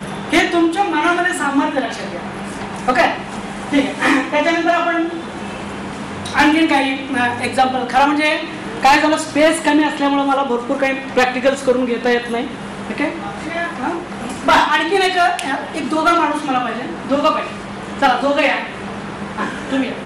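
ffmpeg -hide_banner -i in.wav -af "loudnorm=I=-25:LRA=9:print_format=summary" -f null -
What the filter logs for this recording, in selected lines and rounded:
Input Integrated:    -17.2 LUFS
Input True Peak:      -6.3 dBTP
Input LRA:             3.6 LU
Input Threshold:     -27.3 LUFS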